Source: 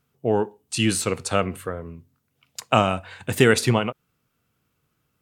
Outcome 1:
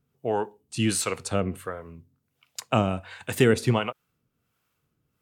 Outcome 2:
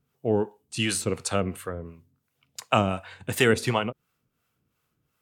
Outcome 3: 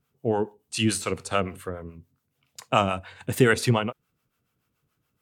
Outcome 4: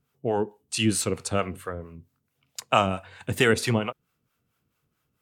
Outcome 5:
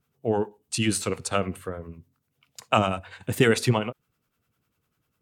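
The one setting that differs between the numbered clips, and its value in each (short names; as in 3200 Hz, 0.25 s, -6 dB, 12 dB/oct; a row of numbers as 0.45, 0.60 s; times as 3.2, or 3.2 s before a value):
harmonic tremolo, rate: 1.4, 2.8, 7, 4.5, 10 Hz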